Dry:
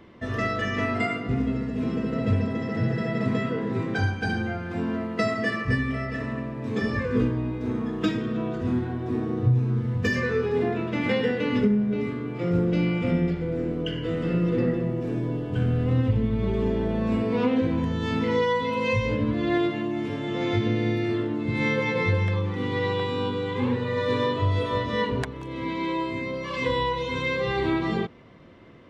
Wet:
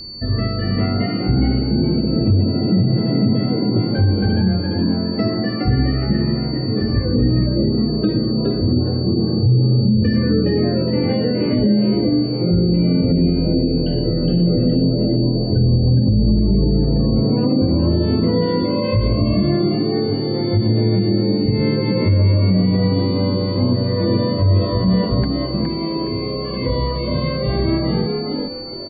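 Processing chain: spectral gate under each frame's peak -25 dB strong; tilt EQ -4.5 dB/octave; on a send: frequency-shifting echo 415 ms, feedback 32%, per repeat +89 Hz, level -4.5 dB; on the sum: whistle 4.5 kHz -29 dBFS; peak limiter -5.5 dBFS, peak gain reduction 8.5 dB; trim -2 dB

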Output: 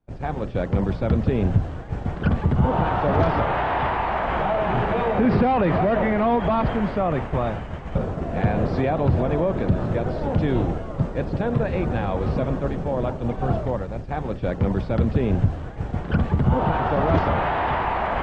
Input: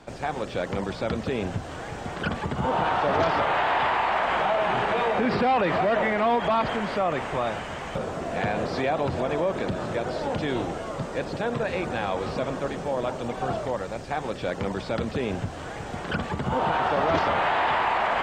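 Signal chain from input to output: RIAA curve playback; expander -22 dBFS

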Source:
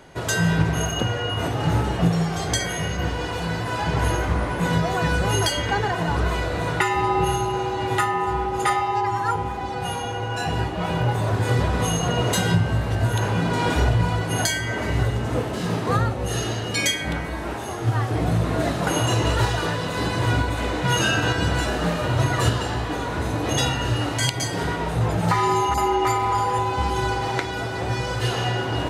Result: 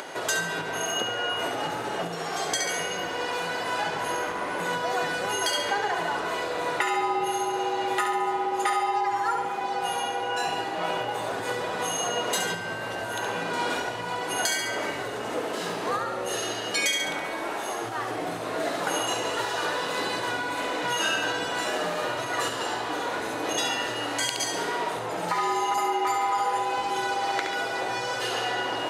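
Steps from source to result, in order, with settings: flutter echo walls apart 11.9 m, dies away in 0.64 s; compression 4:1, threshold -21 dBFS, peak gain reduction 7.5 dB; high-pass 410 Hz 12 dB/octave; upward compressor, threshold -29 dBFS

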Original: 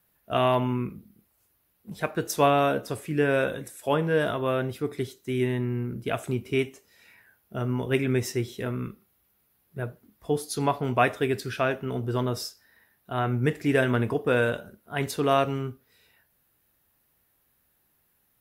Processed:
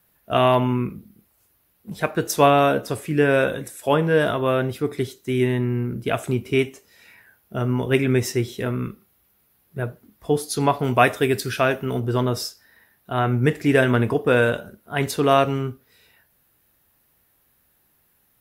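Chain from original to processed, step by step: 10.79–12.00 s: treble shelf 5.7 kHz +7.5 dB; trim +5.5 dB

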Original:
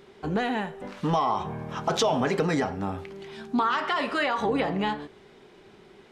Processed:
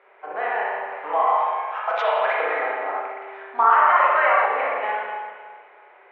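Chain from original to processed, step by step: elliptic band-pass 550–2300 Hz, stop band 80 dB; 1.27–2.37 s: tilt EQ +4 dB/octave; spring tank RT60 1.7 s, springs 33/53 ms, chirp 30 ms, DRR -4.5 dB; 2.88–4.46 s: dynamic bell 970 Hz, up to +5 dB, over -33 dBFS, Q 1.2; trim +2 dB

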